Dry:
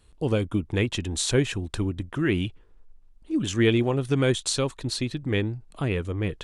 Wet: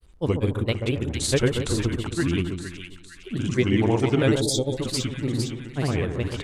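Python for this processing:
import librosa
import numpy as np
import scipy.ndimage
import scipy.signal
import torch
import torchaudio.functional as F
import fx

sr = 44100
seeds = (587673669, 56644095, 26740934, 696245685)

y = fx.granulator(x, sr, seeds[0], grain_ms=100.0, per_s=20.0, spray_ms=100.0, spread_st=3)
y = fx.echo_split(y, sr, split_hz=1600.0, low_ms=135, high_ms=459, feedback_pct=52, wet_db=-6.0)
y = fx.spec_box(y, sr, start_s=4.41, length_s=0.37, low_hz=920.0, high_hz=3200.0, gain_db=-24)
y = y * 10.0 ** (2.0 / 20.0)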